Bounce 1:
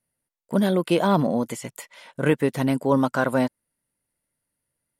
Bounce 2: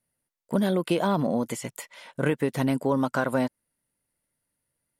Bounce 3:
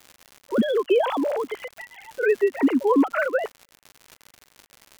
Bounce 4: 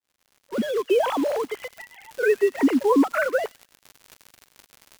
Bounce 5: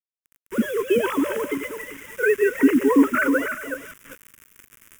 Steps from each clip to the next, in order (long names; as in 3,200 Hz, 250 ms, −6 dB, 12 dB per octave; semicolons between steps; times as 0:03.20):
downward compressor, threshold −20 dBFS, peak gain reduction 6.5 dB
three sine waves on the formant tracks; surface crackle 160 per second −35 dBFS; level +3.5 dB
fade in at the beginning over 1.08 s; in parallel at −8 dB: bit reduction 5 bits; on the sum: delay with a high-pass on its return 97 ms, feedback 31%, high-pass 3,100 Hz, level −15 dB; level −2.5 dB
feedback delay that plays each chunk backwards 197 ms, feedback 41%, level −7 dB; bit reduction 7 bits; phaser with its sweep stopped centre 1,800 Hz, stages 4; level +4.5 dB